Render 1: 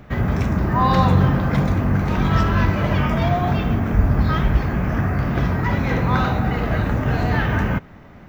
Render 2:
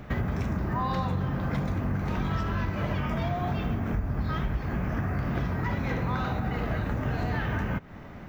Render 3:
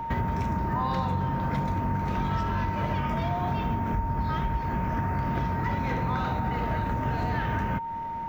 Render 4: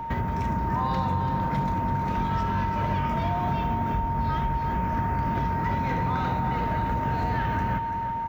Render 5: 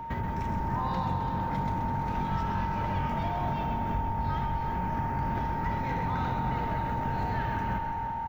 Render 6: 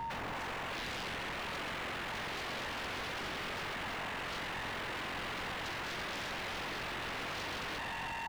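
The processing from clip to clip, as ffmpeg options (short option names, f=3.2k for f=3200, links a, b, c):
-af "acompressor=threshold=-26dB:ratio=6"
-af "aeval=exprs='val(0)+0.0282*sin(2*PI*920*n/s)':c=same"
-af "aecho=1:1:337|674|1011|1348|1685:0.335|0.164|0.0804|0.0394|0.0193"
-filter_complex "[0:a]asplit=7[a][b][c][d][e][f][g];[b]adelay=130,afreqshift=-45,volume=-7dB[h];[c]adelay=260,afreqshift=-90,volume=-12.7dB[i];[d]adelay=390,afreqshift=-135,volume=-18.4dB[j];[e]adelay=520,afreqshift=-180,volume=-24dB[k];[f]adelay=650,afreqshift=-225,volume=-29.7dB[l];[g]adelay=780,afreqshift=-270,volume=-35.4dB[m];[a][h][i][j][k][l][m]amix=inputs=7:normalize=0,volume=-5dB"
-af "aeval=exprs='0.0178*(abs(mod(val(0)/0.0178+3,4)-2)-1)':c=same"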